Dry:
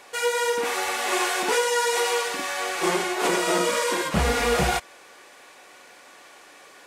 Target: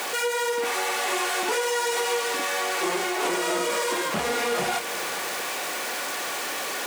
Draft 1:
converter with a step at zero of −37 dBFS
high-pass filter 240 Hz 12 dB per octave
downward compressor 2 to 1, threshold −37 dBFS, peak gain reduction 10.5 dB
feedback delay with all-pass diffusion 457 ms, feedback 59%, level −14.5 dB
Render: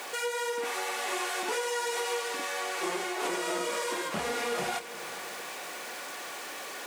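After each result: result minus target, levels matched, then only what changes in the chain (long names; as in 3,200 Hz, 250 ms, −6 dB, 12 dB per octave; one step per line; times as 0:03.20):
converter with a step at zero: distortion −10 dB; downward compressor: peak gain reduction +4.5 dB
change: converter with a step at zero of −25 dBFS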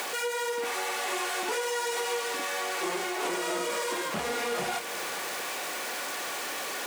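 downward compressor: peak gain reduction +5 dB
change: downward compressor 2 to 1, threshold −26.5 dBFS, peak gain reduction 6 dB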